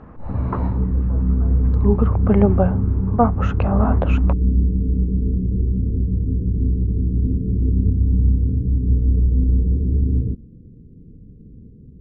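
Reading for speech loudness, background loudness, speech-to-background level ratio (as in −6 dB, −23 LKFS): −22.5 LKFS, −20.0 LKFS, −2.5 dB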